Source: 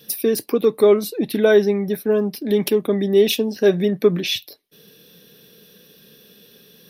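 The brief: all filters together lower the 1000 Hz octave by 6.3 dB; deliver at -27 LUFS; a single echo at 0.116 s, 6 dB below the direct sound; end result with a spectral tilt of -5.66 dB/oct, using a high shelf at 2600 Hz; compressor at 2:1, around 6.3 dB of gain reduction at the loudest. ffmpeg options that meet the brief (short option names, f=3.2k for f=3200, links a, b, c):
-af "equalizer=f=1k:t=o:g=-7.5,highshelf=f=2.6k:g=-7.5,acompressor=threshold=-22dB:ratio=2,aecho=1:1:116:0.501,volume=-3.5dB"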